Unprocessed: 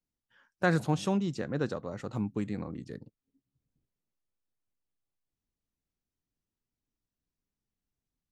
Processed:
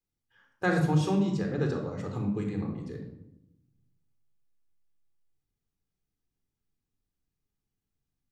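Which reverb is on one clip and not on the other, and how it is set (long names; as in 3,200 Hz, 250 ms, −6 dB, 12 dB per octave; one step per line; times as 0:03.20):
rectangular room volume 2,400 cubic metres, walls furnished, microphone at 3.9 metres
level −3 dB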